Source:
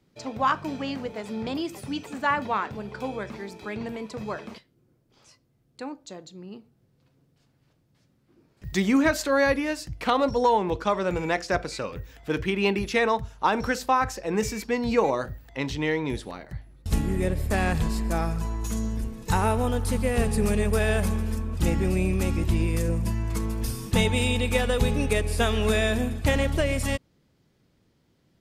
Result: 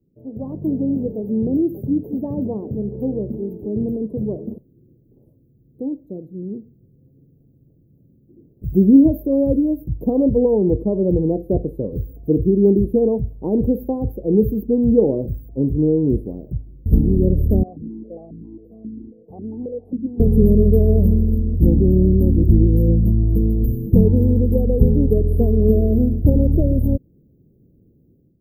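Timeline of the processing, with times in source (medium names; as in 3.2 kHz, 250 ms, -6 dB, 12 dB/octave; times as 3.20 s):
17.63–20.20 s: stepped vowel filter 7.4 Hz
whole clip: inverse Chebyshev band-stop 1.3–7.7 kHz, stop band 60 dB; level rider gain up to 11.5 dB; trim +1 dB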